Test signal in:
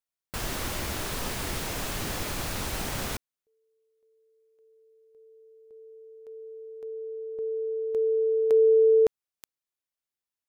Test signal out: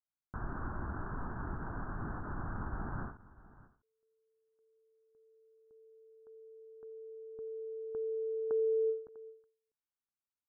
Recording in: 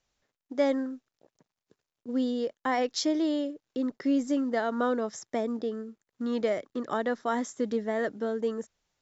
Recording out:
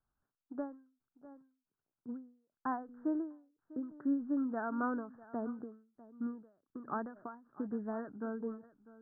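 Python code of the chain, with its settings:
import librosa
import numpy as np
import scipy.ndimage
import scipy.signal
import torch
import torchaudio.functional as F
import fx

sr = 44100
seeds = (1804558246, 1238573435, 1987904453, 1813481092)

y = scipy.signal.sosfilt(scipy.signal.butter(16, 1600.0, 'lowpass', fs=sr, output='sos'), x)
y = fx.peak_eq(y, sr, hz=530.0, db=-12.0, octaves=0.8)
y = y + 10.0 ** (-19.0 / 20.0) * np.pad(y, (int(648 * sr / 1000.0), 0))[:len(y)]
y = fx.end_taper(y, sr, db_per_s=130.0)
y = y * 10.0 ** (-3.5 / 20.0)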